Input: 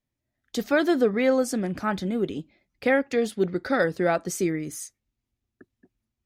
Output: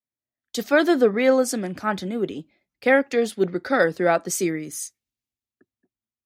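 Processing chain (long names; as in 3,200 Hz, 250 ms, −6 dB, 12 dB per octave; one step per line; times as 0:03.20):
high-pass filter 220 Hz 6 dB per octave
multiband upward and downward expander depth 40%
level +4 dB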